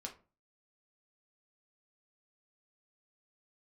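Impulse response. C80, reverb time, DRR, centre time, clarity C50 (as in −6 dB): 19.0 dB, 0.35 s, 0.5 dB, 13 ms, 12.0 dB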